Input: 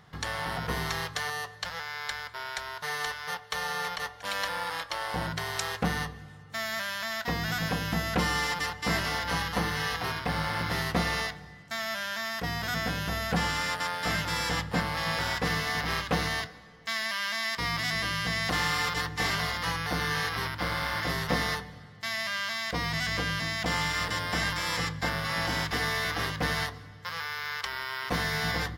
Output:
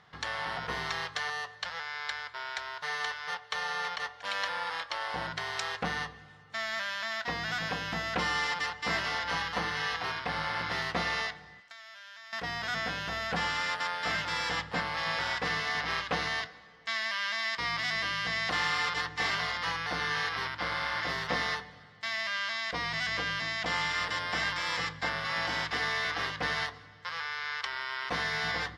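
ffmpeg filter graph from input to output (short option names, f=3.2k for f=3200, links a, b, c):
-filter_complex "[0:a]asettb=1/sr,asplit=3[a][b][c];[a]atrim=end=11.604[d];[b]atrim=start=11.6:end=12.33,asetpts=PTS-STARTPTS,afade=t=in:d=0.004:c=qsin,afade=t=out:st=0.726:d=0.004:c=qsin,highpass=f=1.2k:p=1,acompressor=threshold=-43dB:ratio=12:attack=3.2:release=140:knee=1:detection=peak,aeval=exprs='val(0)+0.000141*(sin(2*PI*50*n/s)+sin(2*PI*2*50*n/s)/2+sin(2*PI*3*50*n/s)/3+sin(2*PI*4*50*n/s)/4+sin(2*PI*5*50*n/s)/5)':c=same[e];[c]atrim=start=12.326[f];[d][e]acrossfade=d=0.004:c1=hsin:c2=qsin[g];[g][f]acrossfade=d=0.004:c1=qsin:c2=hsin,lowpass=4.9k,lowshelf=f=370:g=-11.5"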